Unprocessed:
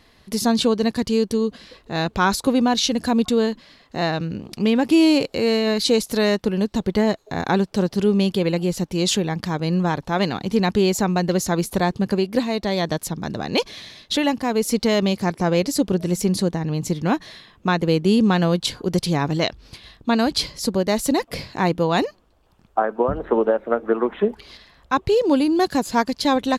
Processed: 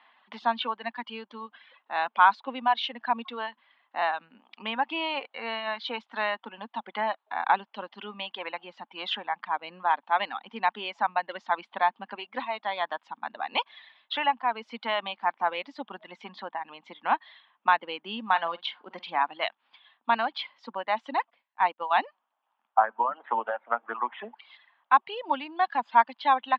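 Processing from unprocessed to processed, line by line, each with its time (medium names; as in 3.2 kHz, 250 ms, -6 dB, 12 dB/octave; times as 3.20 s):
18.26–19.23 s: doubling 47 ms -11 dB
21.30–21.91 s: upward expansion 2.5:1, over -36 dBFS
whole clip: reverb removal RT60 1.8 s; Chebyshev band-pass 230–3300 Hz, order 4; resonant low shelf 600 Hz -13 dB, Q 3; trim -3 dB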